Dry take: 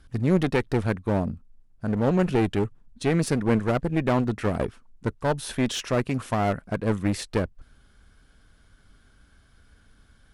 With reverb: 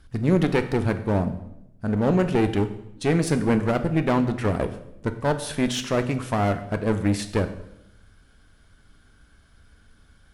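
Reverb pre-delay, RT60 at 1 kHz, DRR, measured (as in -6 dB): 7 ms, 0.75 s, 8.5 dB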